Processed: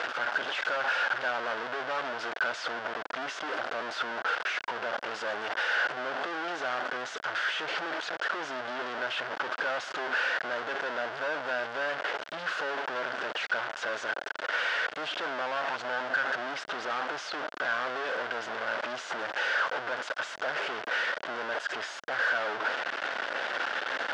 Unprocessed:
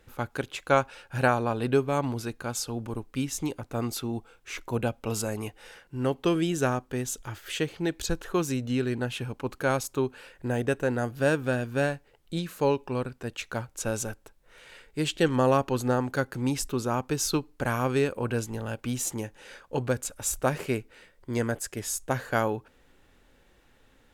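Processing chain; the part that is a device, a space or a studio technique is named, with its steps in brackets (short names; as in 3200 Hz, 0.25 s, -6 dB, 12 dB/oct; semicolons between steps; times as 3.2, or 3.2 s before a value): 15.41–16.24 comb 1.2 ms, depth 58%; home computer beeper (infinite clipping; speaker cabinet 630–4200 Hz, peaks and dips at 640 Hz +6 dB, 1500 Hz +9 dB, 2400 Hz -4 dB, 4000 Hz -5 dB)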